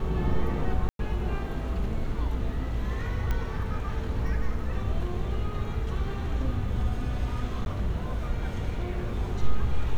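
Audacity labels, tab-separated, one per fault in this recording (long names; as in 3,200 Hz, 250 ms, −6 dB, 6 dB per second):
0.890000	0.990000	drop-out 102 ms
3.310000	3.310000	click −17 dBFS
7.650000	7.660000	drop-out 11 ms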